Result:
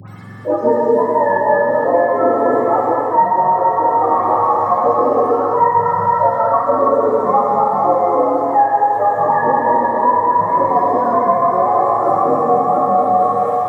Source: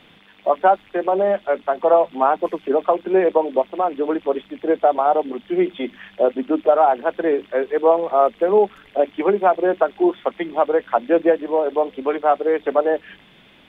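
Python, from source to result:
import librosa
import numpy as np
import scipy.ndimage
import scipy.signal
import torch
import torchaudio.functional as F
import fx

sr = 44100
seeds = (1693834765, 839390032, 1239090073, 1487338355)

p1 = fx.octave_mirror(x, sr, pivot_hz=590.0)
p2 = fx.high_shelf(p1, sr, hz=2100.0, db=9.0)
p3 = p2 + fx.echo_split(p2, sr, split_hz=470.0, low_ms=223, high_ms=465, feedback_pct=52, wet_db=-5, dry=0)
p4 = fx.rev_gated(p3, sr, seeds[0], gate_ms=370, shape='flat', drr_db=-2.5)
p5 = fx.hpss(p4, sr, part='harmonic', gain_db=6)
p6 = fx.peak_eq(p5, sr, hz=1200.0, db=9.0, octaves=0.23)
p7 = fx.small_body(p6, sr, hz=(900.0, 1700.0), ring_ms=20, db=7)
p8 = fx.rider(p7, sr, range_db=10, speed_s=0.5)
p9 = fx.dispersion(p8, sr, late='highs', ms=82.0, hz=1400.0)
p10 = fx.band_squash(p9, sr, depth_pct=40)
y = p10 * librosa.db_to_amplitude(-7.5)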